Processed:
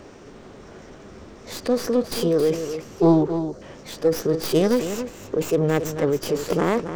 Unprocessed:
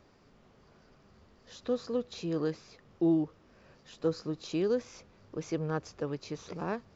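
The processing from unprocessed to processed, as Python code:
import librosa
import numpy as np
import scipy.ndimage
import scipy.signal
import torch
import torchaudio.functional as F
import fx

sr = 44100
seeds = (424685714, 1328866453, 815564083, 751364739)

p1 = fx.tracing_dist(x, sr, depth_ms=0.15)
p2 = fx.peak_eq(p1, sr, hz=310.0, db=7.5, octaves=0.87)
p3 = fx.over_compress(p2, sr, threshold_db=-35.0, ratio=-1.0)
p4 = p2 + (p3 * librosa.db_to_amplitude(-0.5))
p5 = fx.formant_shift(p4, sr, semitones=3)
p6 = fx.spec_erase(p5, sr, start_s=3.39, length_s=0.23, low_hz=740.0, high_hz=3900.0)
p7 = p6 + fx.echo_single(p6, sr, ms=271, db=-9.5, dry=0)
y = p7 * librosa.db_to_amplitude(5.0)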